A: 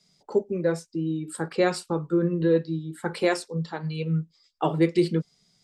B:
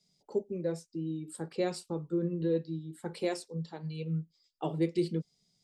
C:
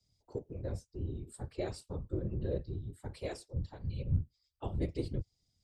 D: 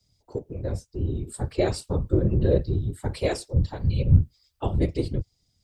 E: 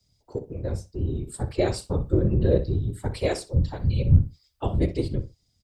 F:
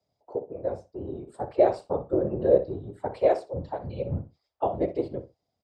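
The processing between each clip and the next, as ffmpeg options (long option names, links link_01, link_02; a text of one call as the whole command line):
ffmpeg -i in.wav -af "equalizer=frequency=1400:width_type=o:width=1.3:gain=-10,volume=-7.5dB" out.wav
ffmpeg -i in.wav -af "afftfilt=real='hypot(re,im)*cos(2*PI*random(0))':imag='hypot(re,im)*sin(2*PI*random(1))':win_size=512:overlap=0.75,lowshelf=frequency=130:width_type=q:width=1.5:gain=12.5,volume=-1dB" out.wav
ffmpeg -i in.wav -af "dynaudnorm=framelen=210:gausssize=11:maxgain=6.5dB,volume=8dB" out.wav
ffmpeg -i in.wav -filter_complex "[0:a]asplit=2[link_01][link_02];[link_02]adelay=62,lowpass=frequency=4300:poles=1,volume=-13dB,asplit=2[link_03][link_04];[link_04]adelay=62,lowpass=frequency=4300:poles=1,volume=0.18[link_05];[link_01][link_03][link_05]amix=inputs=3:normalize=0" out.wav
ffmpeg -i in.wav -af "bandpass=frequency=680:width_type=q:width=2.2:csg=0,volume=8.5dB" out.wav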